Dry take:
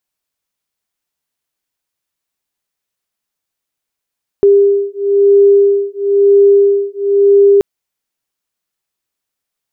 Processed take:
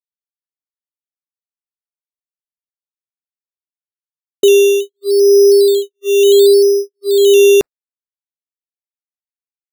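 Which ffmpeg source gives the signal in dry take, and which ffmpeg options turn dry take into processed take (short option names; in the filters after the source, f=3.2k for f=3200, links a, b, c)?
-f lavfi -i "aevalsrc='0.335*(sin(2*PI*400*t)+sin(2*PI*401*t))':d=3.18:s=44100"
-af "agate=range=-47dB:threshold=-15dB:ratio=16:detection=peak,acrusher=samples=11:mix=1:aa=0.000001:lfo=1:lforange=6.6:lforate=0.7"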